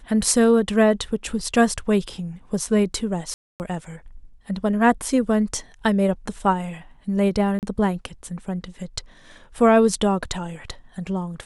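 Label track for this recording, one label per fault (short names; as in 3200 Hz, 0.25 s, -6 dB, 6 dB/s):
3.340000	3.600000	gap 0.259 s
7.590000	7.630000	gap 38 ms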